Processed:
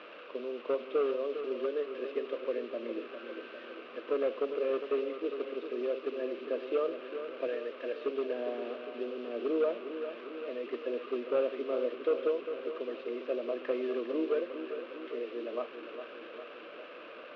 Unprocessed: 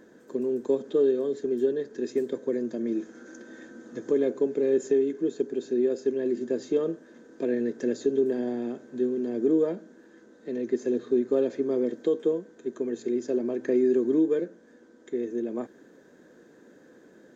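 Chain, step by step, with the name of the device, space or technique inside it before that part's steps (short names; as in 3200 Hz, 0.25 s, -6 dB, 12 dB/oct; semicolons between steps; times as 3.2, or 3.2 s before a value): digital answering machine (BPF 370–3200 Hz; delta modulation 32 kbps, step -42 dBFS; speaker cabinet 370–3200 Hz, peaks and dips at 380 Hz -7 dB, 590 Hz +6 dB, 860 Hz -8 dB, 1200 Hz +8 dB, 1800 Hz -6 dB, 2700 Hz +8 dB); 7.47–7.98 bell 150 Hz -14 dB 1.8 oct; darkening echo 0.404 s, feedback 65%, level -9 dB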